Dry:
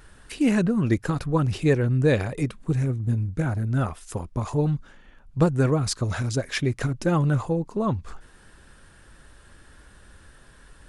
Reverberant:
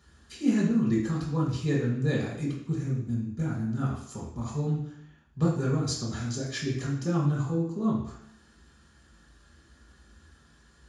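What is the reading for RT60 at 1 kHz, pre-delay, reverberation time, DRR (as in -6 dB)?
0.70 s, 3 ms, 0.70 s, -5.5 dB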